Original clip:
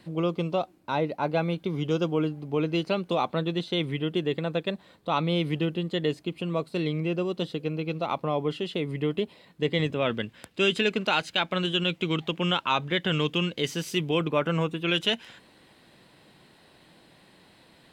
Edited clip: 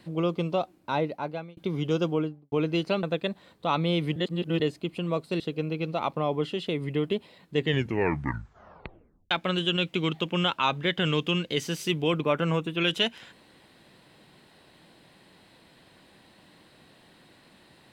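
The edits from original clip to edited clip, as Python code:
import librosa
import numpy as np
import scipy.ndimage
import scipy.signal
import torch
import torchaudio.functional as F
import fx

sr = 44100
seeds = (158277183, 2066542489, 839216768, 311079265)

y = fx.studio_fade_out(x, sr, start_s=2.09, length_s=0.43)
y = fx.edit(y, sr, fx.fade_out_span(start_s=0.98, length_s=0.59),
    fx.cut(start_s=3.03, length_s=1.43),
    fx.reverse_span(start_s=5.59, length_s=0.44),
    fx.cut(start_s=6.83, length_s=0.64),
    fx.tape_stop(start_s=9.62, length_s=1.76), tone=tone)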